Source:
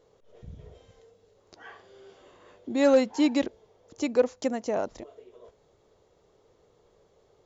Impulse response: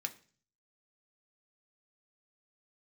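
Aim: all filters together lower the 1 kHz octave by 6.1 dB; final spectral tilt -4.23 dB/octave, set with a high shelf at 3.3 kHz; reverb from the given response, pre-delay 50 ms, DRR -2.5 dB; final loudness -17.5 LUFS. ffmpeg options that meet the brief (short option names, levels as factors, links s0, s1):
-filter_complex "[0:a]equalizer=f=1000:t=o:g=-8.5,highshelf=f=3300:g=-5,asplit=2[s0][s1];[1:a]atrim=start_sample=2205,adelay=50[s2];[s1][s2]afir=irnorm=-1:irlink=0,volume=1.33[s3];[s0][s3]amix=inputs=2:normalize=0,volume=2.11"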